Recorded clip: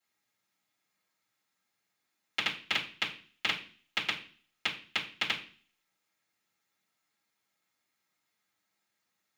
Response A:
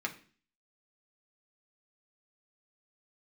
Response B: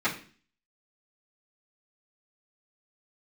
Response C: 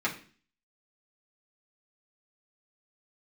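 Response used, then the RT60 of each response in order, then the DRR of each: B; 0.40, 0.40, 0.40 seconds; 0.5, −13.0, −6.0 decibels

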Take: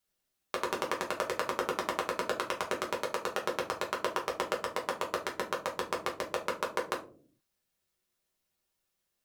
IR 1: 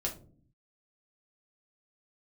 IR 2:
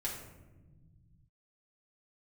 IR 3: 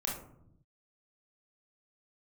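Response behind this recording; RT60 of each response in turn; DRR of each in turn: 1; 0.45, 1.2, 0.75 seconds; −2.0, −5.0, −3.0 decibels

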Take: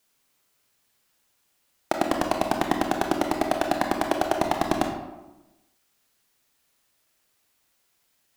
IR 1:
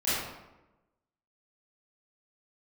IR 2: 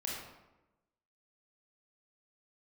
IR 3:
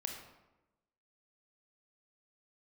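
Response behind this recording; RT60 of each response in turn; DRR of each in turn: 3; 1.0, 1.0, 1.0 seconds; −13.5, −4.0, 2.5 decibels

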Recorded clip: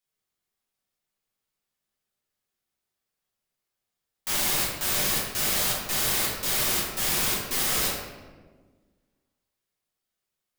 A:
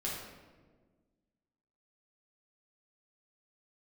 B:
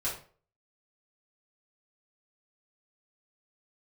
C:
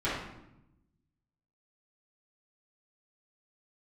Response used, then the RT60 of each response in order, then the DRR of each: A; 1.5, 0.45, 0.85 seconds; −6.0, −8.5, −12.5 decibels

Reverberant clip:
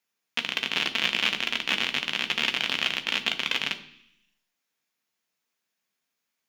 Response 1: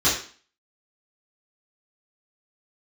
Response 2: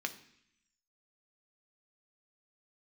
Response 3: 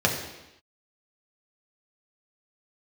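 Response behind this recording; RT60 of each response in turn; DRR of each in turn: 2; 0.40, 0.70, 0.90 seconds; −12.5, 6.0, −1.5 decibels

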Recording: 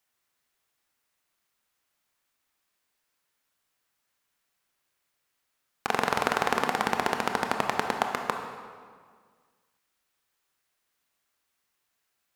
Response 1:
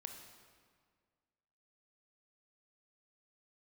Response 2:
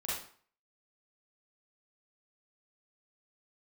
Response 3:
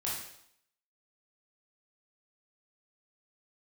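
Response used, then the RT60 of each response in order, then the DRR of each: 1; 1.8, 0.50, 0.70 seconds; 4.0, −8.5, −6.0 decibels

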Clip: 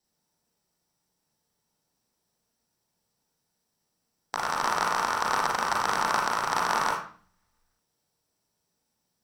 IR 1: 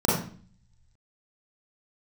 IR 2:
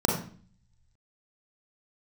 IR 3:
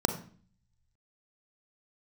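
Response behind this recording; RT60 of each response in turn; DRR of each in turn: 2; 0.45, 0.45, 0.45 seconds; −7.0, −1.0, 7.5 decibels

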